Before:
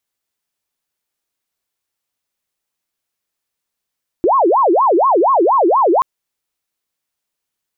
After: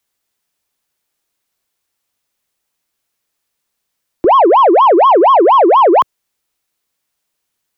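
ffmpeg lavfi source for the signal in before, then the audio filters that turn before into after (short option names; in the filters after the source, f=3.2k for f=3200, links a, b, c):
-f lavfi -i "aevalsrc='0.355*sin(2*PI*(714.5*t-385.5/(2*PI*4.2)*sin(2*PI*4.2*t)))':d=1.78:s=44100"
-filter_complex "[0:a]acrossover=split=120|360|610[a][b][c][d];[b]alimiter=limit=-19.5dB:level=0:latency=1[e];[a][e][c][d]amix=inputs=4:normalize=0,acontrast=66"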